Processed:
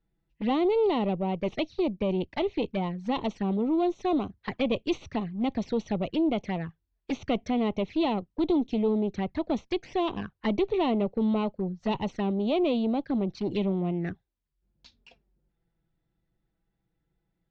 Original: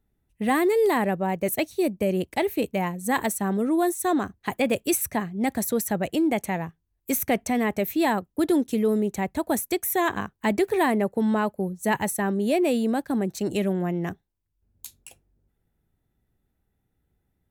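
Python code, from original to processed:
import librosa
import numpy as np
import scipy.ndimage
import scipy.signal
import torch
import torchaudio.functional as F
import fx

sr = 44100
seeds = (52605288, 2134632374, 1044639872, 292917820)

y = fx.diode_clip(x, sr, knee_db=-22.0)
y = fx.env_flanger(y, sr, rest_ms=6.1, full_db=-24.5)
y = scipy.signal.sosfilt(scipy.signal.butter(8, 5200.0, 'lowpass', fs=sr, output='sos'), y)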